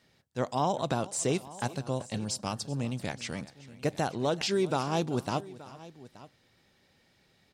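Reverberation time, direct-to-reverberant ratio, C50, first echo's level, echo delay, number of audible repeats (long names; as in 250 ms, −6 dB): no reverb audible, no reverb audible, no reverb audible, −19.0 dB, 383 ms, 2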